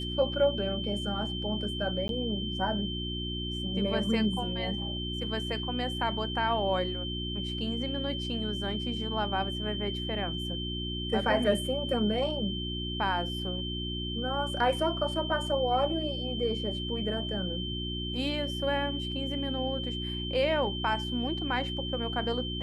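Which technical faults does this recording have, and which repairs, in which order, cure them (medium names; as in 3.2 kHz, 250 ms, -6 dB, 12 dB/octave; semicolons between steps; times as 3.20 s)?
hum 60 Hz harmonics 6 -36 dBFS
whine 3.1 kHz -36 dBFS
2.08–2.09 s: dropout 12 ms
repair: de-hum 60 Hz, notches 6; band-stop 3.1 kHz, Q 30; interpolate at 2.08 s, 12 ms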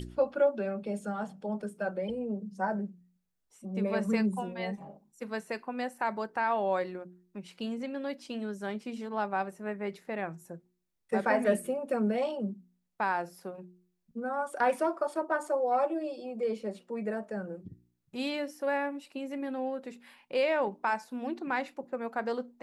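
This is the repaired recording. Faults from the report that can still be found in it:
nothing left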